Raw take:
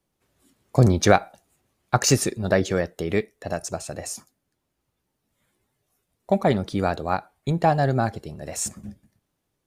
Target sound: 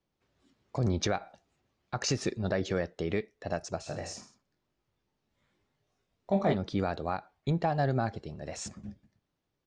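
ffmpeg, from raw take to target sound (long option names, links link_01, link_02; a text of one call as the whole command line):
ffmpeg -i in.wav -filter_complex "[0:a]lowpass=frequency=5900:width=0.5412,lowpass=frequency=5900:width=1.3066,alimiter=limit=-13dB:level=0:latency=1:release=141,asplit=3[link_01][link_02][link_03];[link_01]afade=type=out:start_time=3.86:duration=0.02[link_04];[link_02]aecho=1:1:20|46|79.8|123.7|180.9:0.631|0.398|0.251|0.158|0.1,afade=type=in:start_time=3.86:duration=0.02,afade=type=out:start_time=6.53:duration=0.02[link_05];[link_03]afade=type=in:start_time=6.53:duration=0.02[link_06];[link_04][link_05][link_06]amix=inputs=3:normalize=0,volume=-5dB" out.wav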